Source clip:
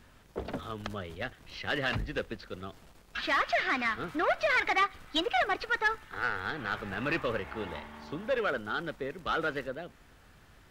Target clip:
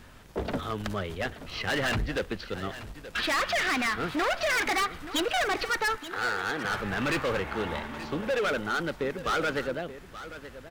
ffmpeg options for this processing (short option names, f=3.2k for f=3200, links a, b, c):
-filter_complex "[0:a]asettb=1/sr,asplit=3[a][b][c];[a]atrim=end=5.974[d];[b]atrim=start=5.97:end=6.65,asetpts=PTS-STARTPTS,afade=t=in:d=0.004:c=qsin,afade=t=out:st=0.676:d=0.004:c=qsin,highpass=210[e];[c]atrim=start=6.646[f];[d][e]acrossfade=d=0.004:c1=hsin:c2=qsin[g];[g][f]acrossfade=d=0.004:c1=qsin:c2=hsin,asoftclip=type=hard:threshold=-31.5dB,aecho=1:1:878:0.2,volume=7dB"